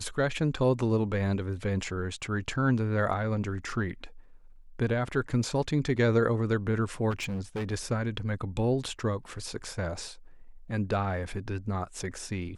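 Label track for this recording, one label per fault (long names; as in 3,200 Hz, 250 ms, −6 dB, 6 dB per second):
7.100000	7.730000	clipping −29 dBFS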